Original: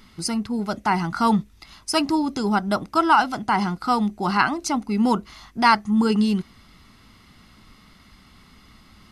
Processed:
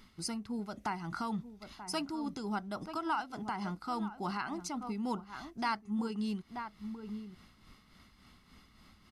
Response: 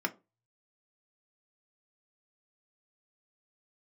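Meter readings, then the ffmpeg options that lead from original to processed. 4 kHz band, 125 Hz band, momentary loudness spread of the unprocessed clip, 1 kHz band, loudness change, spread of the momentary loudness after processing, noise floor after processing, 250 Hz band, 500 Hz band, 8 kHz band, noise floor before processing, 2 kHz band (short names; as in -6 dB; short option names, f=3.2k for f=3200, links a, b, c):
-15.0 dB, -14.5 dB, 8 LU, -16.5 dB, -16.5 dB, 9 LU, -63 dBFS, -15.0 dB, -15.5 dB, -13.0 dB, -53 dBFS, -17.0 dB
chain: -filter_complex "[0:a]asplit=2[a][b];[b]adelay=932.9,volume=-13dB,highshelf=f=4k:g=-21[c];[a][c]amix=inputs=2:normalize=0,tremolo=f=3.5:d=0.53,acompressor=threshold=-30dB:ratio=2,volume=-7.5dB"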